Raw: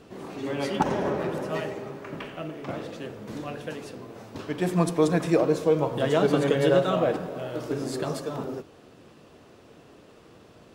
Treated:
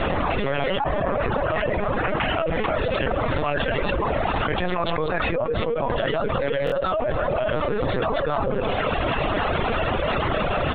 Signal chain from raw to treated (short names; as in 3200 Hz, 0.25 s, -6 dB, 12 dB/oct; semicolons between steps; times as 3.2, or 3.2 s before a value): Bessel high-pass 620 Hz, order 4; air absorption 250 m; LPC vocoder at 8 kHz pitch kept; reverb removal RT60 0.73 s; feedback echo 0.133 s, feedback 56%, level -23.5 dB; stuck buffer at 6.65, samples 1024, times 2; fast leveller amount 100%